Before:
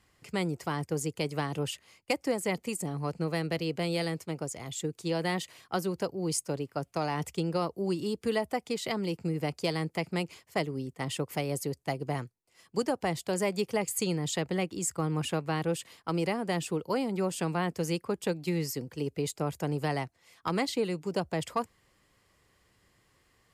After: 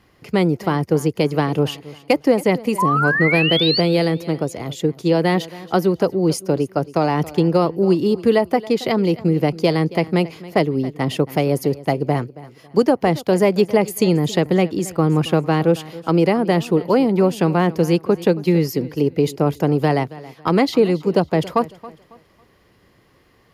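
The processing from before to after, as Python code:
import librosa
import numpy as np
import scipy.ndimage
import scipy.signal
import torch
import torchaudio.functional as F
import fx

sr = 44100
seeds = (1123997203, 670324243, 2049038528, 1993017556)

y = fx.peak_eq(x, sr, hz=8000.0, db=-14.5, octaves=0.39)
y = fx.spec_paint(y, sr, seeds[0], shape='rise', start_s=2.78, length_s=1.03, low_hz=960.0, high_hz=4800.0, level_db=-29.0)
y = fx.peak_eq(y, sr, hz=320.0, db=7.0, octaves=2.8)
y = fx.echo_feedback(y, sr, ms=275, feedback_pct=31, wet_db=-18.5)
y = y * 10.0 ** (8.5 / 20.0)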